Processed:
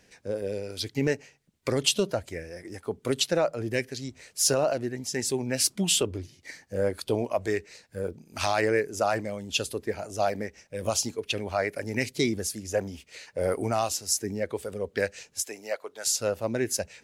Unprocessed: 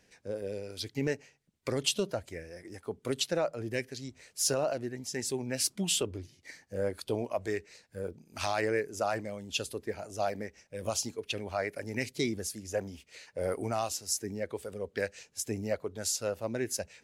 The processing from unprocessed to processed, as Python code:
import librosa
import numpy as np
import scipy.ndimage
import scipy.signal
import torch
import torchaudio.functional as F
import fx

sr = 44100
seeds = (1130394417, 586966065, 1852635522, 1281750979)

y = fx.highpass(x, sr, hz=670.0, slope=12, at=(15.43, 16.07))
y = y * librosa.db_to_amplitude(5.5)